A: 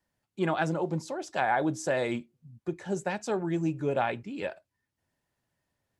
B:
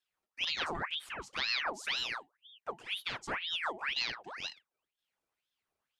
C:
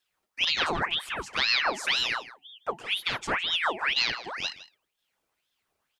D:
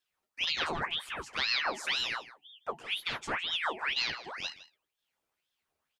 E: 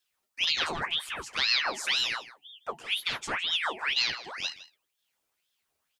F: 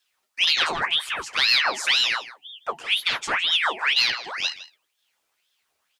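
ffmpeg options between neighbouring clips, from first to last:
ffmpeg -i in.wav -af "aeval=exprs='val(0)*sin(2*PI*2000*n/s+2000*0.75/2*sin(2*PI*2*n/s))':channel_layout=same,volume=-4.5dB" out.wav
ffmpeg -i in.wav -af "aecho=1:1:160:0.15,volume=8.5dB" out.wav
ffmpeg -i in.wav -filter_complex "[0:a]asplit=2[link_01][link_02];[link_02]adelay=13,volume=-9dB[link_03];[link_01][link_03]amix=inputs=2:normalize=0,volume=-6dB" out.wav
ffmpeg -i in.wav -af "highshelf=frequency=2800:gain=8" out.wav
ffmpeg -i in.wav -filter_complex "[0:a]asplit=2[link_01][link_02];[link_02]highpass=frequency=720:poles=1,volume=7dB,asoftclip=type=tanh:threshold=-11.5dB[link_03];[link_01][link_03]amix=inputs=2:normalize=0,lowpass=frequency=6000:poles=1,volume=-6dB,volume=5dB" out.wav

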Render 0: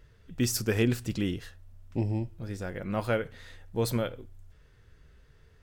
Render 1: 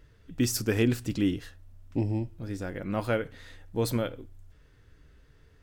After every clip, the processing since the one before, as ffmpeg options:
ffmpeg -i in.wav -af "equalizer=frequency=290:width=7.2:gain=9.5" out.wav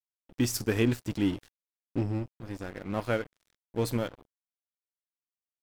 ffmpeg -i in.wav -af "aeval=exprs='sgn(val(0))*max(abs(val(0))-0.01,0)':channel_layout=same" out.wav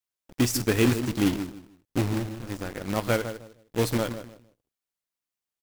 ffmpeg -i in.wav -filter_complex "[0:a]asplit=2[link_01][link_02];[link_02]adelay=154,lowpass=frequency=1000:poles=1,volume=-9dB,asplit=2[link_03][link_04];[link_04]adelay=154,lowpass=frequency=1000:poles=1,volume=0.26,asplit=2[link_05][link_06];[link_06]adelay=154,lowpass=frequency=1000:poles=1,volume=0.26[link_07];[link_03][link_05][link_07]amix=inputs=3:normalize=0[link_08];[link_01][link_08]amix=inputs=2:normalize=0,acrusher=bits=2:mode=log:mix=0:aa=0.000001,volume=3.5dB" out.wav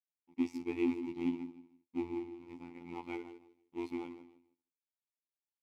ffmpeg -i in.wav -filter_complex "[0:a]asplit=3[link_01][link_02][link_03];[link_01]bandpass=frequency=300:width_type=q:width=8,volume=0dB[link_04];[link_02]bandpass=frequency=870:width_type=q:width=8,volume=-6dB[link_05];[link_03]bandpass=frequency=2240:width_type=q:width=8,volume=-9dB[link_06];[link_04][link_05][link_06]amix=inputs=3:normalize=0,afftfilt=real='hypot(re,im)*cos(PI*b)':imag='0':win_size=2048:overlap=0.75,volume=2dB" out.wav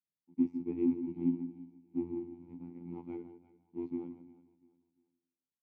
ffmpeg -i in.wav -af "bandpass=frequency=170:width_type=q:width=1.7:csg=0,aecho=1:1:347|694|1041:0.119|0.038|0.0122,volume=9dB" out.wav

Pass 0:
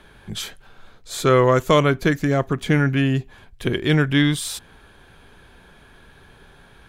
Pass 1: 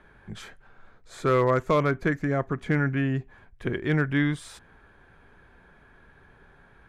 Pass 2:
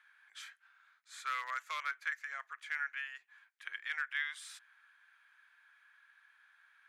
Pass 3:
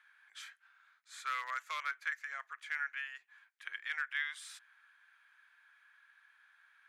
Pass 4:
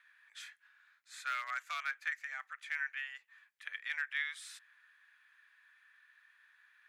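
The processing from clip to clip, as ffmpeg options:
ffmpeg -i in.wav -af "lowpass=9000,highshelf=frequency=2500:width_type=q:width=1.5:gain=-8,volume=6.5dB,asoftclip=hard,volume=-6.5dB,volume=-6.5dB" out.wav
ffmpeg -i in.wav -af "highpass=frequency=1400:width=0.5412,highpass=frequency=1400:width=1.3066,volume=-4.5dB" out.wav
ffmpeg -i in.wav -af anull out.wav
ffmpeg -i in.wav -af "afreqshift=98" out.wav

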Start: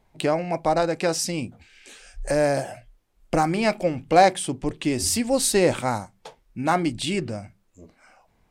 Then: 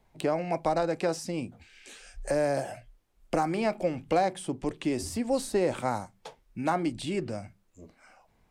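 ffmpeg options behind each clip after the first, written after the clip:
ffmpeg -i in.wav -filter_complex "[0:a]acrossover=split=250|1400[link_01][link_02][link_03];[link_01]acompressor=threshold=-35dB:ratio=4[link_04];[link_02]acompressor=threshold=-21dB:ratio=4[link_05];[link_03]acompressor=threshold=-38dB:ratio=4[link_06];[link_04][link_05][link_06]amix=inputs=3:normalize=0,volume=-2.5dB" out.wav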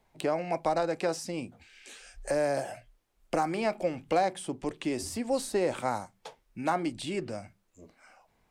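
ffmpeg -i in.wav -af "lowshelf=frequency=260:gain=-6" out.wav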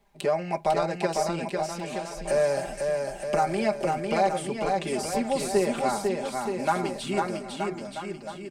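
ffmpeg -i in.wav -af "aecho=1:1:5:0.93,aecho=1:1:500|925|1286|1593|1854:0.631|0.398|0.251|0.158|0.1" out.wav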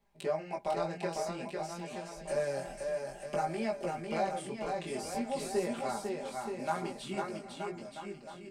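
ffmpeg -i in.wav -af "flanger=delay=17:depth=6.8:speed=0.52,volume=-6dB" out.wav

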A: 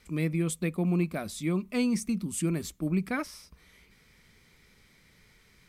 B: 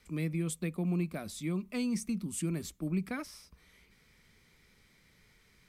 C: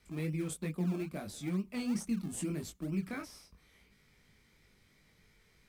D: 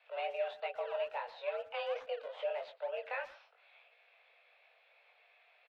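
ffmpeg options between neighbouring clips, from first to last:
ffmpeg -i in.wav -filter_complex "[0:a]acrossover=split=260|3000[link_01][link_02][link_03];[link_02]acompressor=threshold=-33dB:ratio=6[link_04];[link_01][link_04][link_03]amix=inputs=3:normalize=0,volume=-4dB" out.wav
ffmpeg -i in.wav -filter_complex "[0:a]flanger=delay=19.5:depth=2.4:speed=3,asplit=2[link_01][link_02];[link_02]acrusher=samples=31:mix=1:aa=0.000001:lfo=1:lforange=31:lforate=2.3,volume=-12dB[link_03];[link_01][link_03]amix=inputs=2:normalize=0" out.wav
ffmpeg -i in.wav -filter_complex "[0:a]highpass=frequency=300:width_type=q:width=0.5412,highpass=frequency=300:width_type=q:width=1.307,lowpass=frequency=3300:width_type=q:width=0.5176,lowpass=frequency=3300:width_type=q:width=0.7071,lowpass=frequency=3300:width_type=q:width=1.932,afreqshift=270,asplit=2[link_01][link_02];[link_02]adelay=120,highpass=300,lowpass=3400,asoftclip=type=hard:threshold=-39.5dB,volume=-16dB[link_03];[link_01][link_03]amix=inputs=2:normalize=0,volume=4dB" out.wav

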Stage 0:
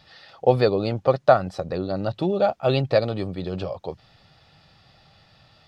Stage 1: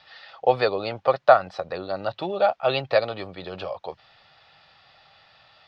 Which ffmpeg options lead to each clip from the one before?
ffmpeg -i in.wav -filter_complex "[0:a]acrossover=split=570 4800:gain=0.158 1 0.0631[link_01][link_02][link_03];[link_01][link_02][link_03]amix=inputs=3:normalize=0,volume=4dB" out.wav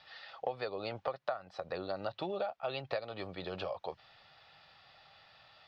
ffmpeg -i in.wav -af "acompressor=threshold=-28dB:ratio=10,volume=-5dB" out.wav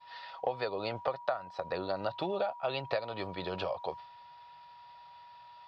ffmpeg -i in.wav -af "aeval=exprs='val(0)+0.00398*sin(2*PI*960*n/s)':channel_layout=same,agate=range=-33dB:threshold=-45dB:ratio=3:detection=peak,volume=3.5dB" out.wav

